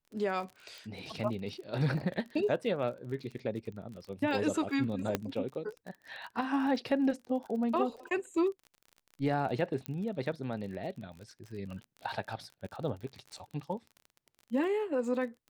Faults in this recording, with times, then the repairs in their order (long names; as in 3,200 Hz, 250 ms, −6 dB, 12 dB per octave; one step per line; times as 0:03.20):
surface crackle 41 per second −41 dBFS
0:00.78: click
0:05.15: click −15 dBFS
0:09.86: click −22 dBFS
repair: click removal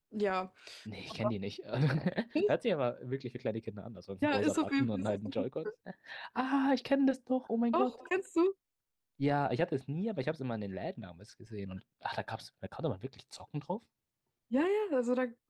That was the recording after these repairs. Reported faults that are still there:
none of them is left